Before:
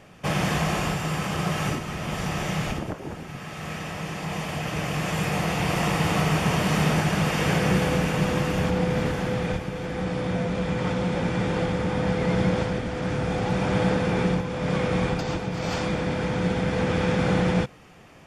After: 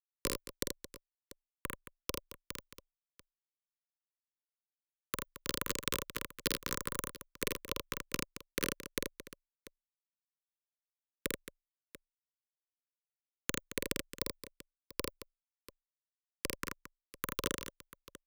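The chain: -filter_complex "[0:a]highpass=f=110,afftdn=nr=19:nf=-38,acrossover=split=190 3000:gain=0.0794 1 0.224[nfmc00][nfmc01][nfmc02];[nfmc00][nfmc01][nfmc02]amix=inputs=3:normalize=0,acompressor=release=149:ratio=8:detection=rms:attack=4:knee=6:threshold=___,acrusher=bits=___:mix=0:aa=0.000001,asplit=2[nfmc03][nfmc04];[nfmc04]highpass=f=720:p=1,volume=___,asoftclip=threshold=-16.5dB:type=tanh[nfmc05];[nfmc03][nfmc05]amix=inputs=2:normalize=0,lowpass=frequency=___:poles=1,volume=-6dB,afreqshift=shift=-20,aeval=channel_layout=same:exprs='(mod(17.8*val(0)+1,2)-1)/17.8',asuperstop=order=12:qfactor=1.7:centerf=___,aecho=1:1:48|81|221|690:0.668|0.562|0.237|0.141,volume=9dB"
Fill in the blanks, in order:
-28dB, 3, 18dB, 4500, 750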